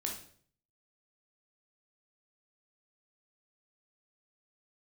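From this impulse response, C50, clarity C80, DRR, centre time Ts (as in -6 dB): 5.5 dB, 11.0 dB, 0.0 dB, 27 ms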